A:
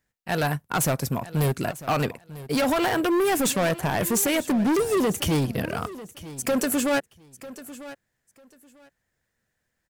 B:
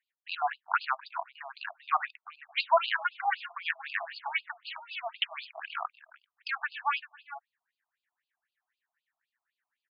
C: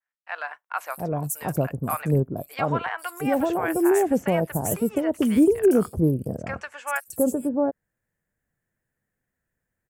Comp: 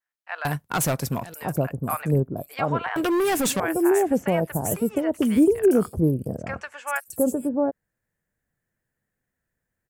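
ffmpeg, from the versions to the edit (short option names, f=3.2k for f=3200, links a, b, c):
-filter_complex "[0:a]asplit=2[a][b];[2:a]asplit=3[c][d][e];[c]atrim=end=0.452[f];[a]atrim=start=0.448:end=1.342[g];[d]atrim=start=1.338:end=2.962[h];[b]atrim=start=2.958:end=3.602[i];[e]atrim=start=3.598[j];[f][g]acrossfade=d=0.004:c1=hsin:c2=hsin[k];[k][h]acrossfade=d=0.004:c1=hsin:c2=hsin[l];[l][i]acrossfade=d=0.004:c1=hsin:c2=hsin[m];[m][j]acrossfade=d=0.004:c1=hsin:c2=hsin"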